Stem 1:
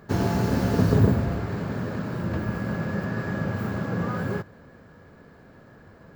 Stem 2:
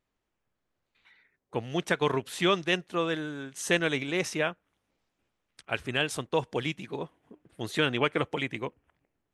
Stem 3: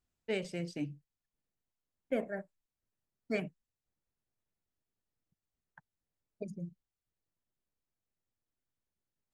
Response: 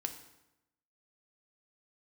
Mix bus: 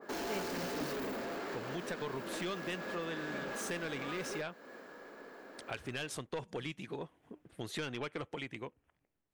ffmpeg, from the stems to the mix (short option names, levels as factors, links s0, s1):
-filter_complex "[0:a]highpass=f=290:w=0.5412,highpass=f=290:w=1.3066,asoftclip=type=tanh:threshold=0.0282,adynamicequalizer=threshold=0.00282:dfrequency=1900:dqfactor=0.7:tfrequency=1900:tqfactor=0.7:attack=5:release=100:ratio=0.375:range=2.5:mode=boostabove:tftype=highshelf,volume=1.19[s0];[1:a]dynaudnorm=f=460:g=7:m=3.76,volume=0.398,asplit=2[s1][s2];[2:a]volume=0.422[s3];[s2]apad=whole_len=411454[s4];[s3][s4]sidechaincompress=threshold=0.00891:ratio=3:attack=16:release=441[s5];[s0][s1]amix=inputs=2:normalize=0,asoftclip=type=tanh:threshold=0.0841,acompressor=threshold=0.01:ratio=3,volume=1[s6];[s5][s6]amix=inputs=2:normalize=0"